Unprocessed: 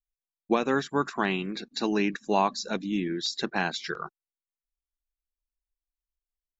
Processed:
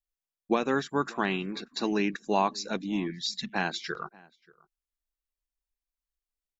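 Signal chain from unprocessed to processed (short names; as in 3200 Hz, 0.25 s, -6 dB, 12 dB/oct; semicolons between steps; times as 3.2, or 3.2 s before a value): outdoor echo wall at 100 m, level -24 dB; spectral gain 3.1–3.53, 250–1700 Hz -24 dB; gain -1.5 dB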